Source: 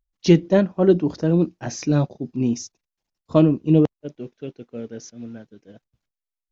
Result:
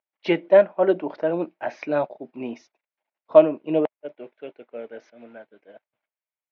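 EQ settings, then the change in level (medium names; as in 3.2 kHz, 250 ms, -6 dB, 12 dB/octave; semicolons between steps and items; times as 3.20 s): cabinet simulation 450–3100 Hz, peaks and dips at 620 Hz +10 dB, 890 Hz +6 dB, 1.5 kHz +4 dB, 2.2 kHz +7 dB; -1.0 dB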